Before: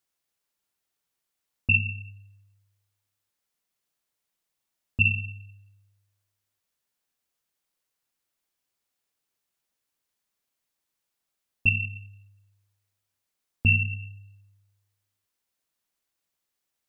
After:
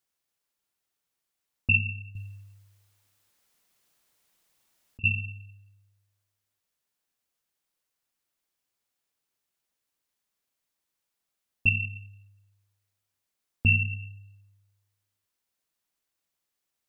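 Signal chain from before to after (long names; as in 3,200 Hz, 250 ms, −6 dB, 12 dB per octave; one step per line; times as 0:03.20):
0:02.15–0:05.04: compressor whose output falls as the input rises −38 dBFS, ratio −1
level −1 dB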